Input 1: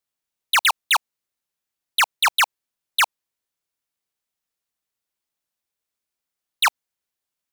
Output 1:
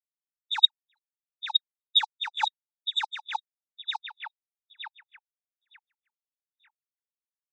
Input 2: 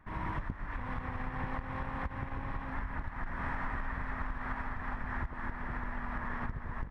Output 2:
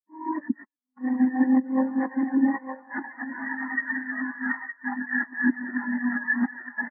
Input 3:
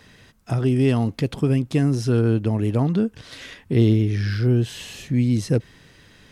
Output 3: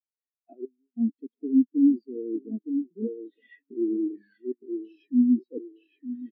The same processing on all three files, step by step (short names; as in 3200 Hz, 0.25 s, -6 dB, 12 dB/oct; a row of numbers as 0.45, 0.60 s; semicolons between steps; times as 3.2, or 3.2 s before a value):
nonlinear frequency compression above 3400 Hz 1.5:1; recorder AGC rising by 28 dB/s; steep high-pass 240 Hz 36 dB/oct; hard clip -13.5 dBFS; step gate "xxxx..xxxxxx" 93 bpm -24 dB; bell 1100 Hz -7 dB 0.75 oct; thinning echo 0.915 s, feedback 47%, high-pass 330 Hz, level -5.5 dB; low-pass opened by the level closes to 2000 Hz, open at -20.5 dBFS; high shelf 4100 Hz +7.5 dB; reverse; compressor 6:1, threshold -33 dBFS; reverse; echo 0.253 s -22.5 dB; spectral expander 4:1; match loudness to -27 LUFS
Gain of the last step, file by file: +13.0, +10.5, +10.0 dB